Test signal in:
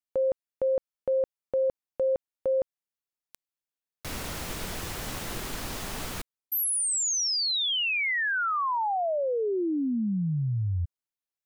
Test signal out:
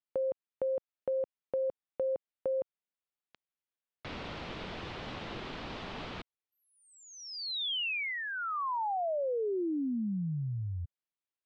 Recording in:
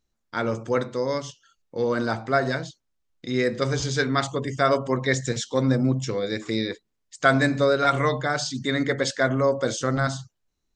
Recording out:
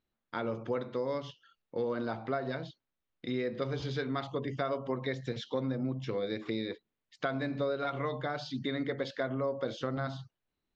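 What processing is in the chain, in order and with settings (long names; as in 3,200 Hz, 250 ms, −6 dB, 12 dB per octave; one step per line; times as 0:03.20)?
downward compressor 4 to 1, threshold −27 dBFS
dynamic equaliser 1,700 Hz, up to −6 dB, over −45 dBFS, Q 1.7
low-pass filter 3,800 Hz 24 dB per octave
low-shelf EQ 72 Hz −11.5 dB
level −2.5 dB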